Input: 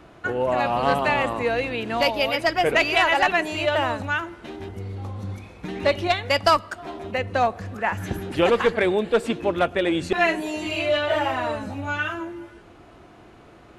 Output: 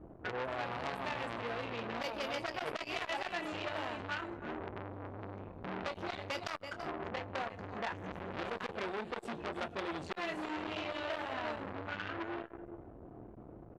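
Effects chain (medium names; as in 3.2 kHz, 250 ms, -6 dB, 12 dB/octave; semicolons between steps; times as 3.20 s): bass shelf 390 Hz +5 dB; level-controlled noise filter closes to 590 Hz, open at -16.5 dBFS; compression 6:1, threshold -29 dBFS, peak gain reduction 16 dB; doubling 26 ms -9 dB; delay 331 ms -10.5 dB; transformer saturation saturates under 2.6 kHz; trim -3 dB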